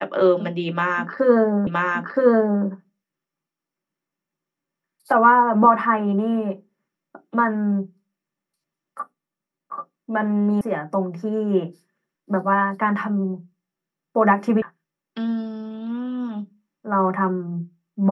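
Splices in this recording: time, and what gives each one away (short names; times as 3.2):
1.67 repeat of the last 0.97 s
10.61 sound cut off
14.62 sound cut off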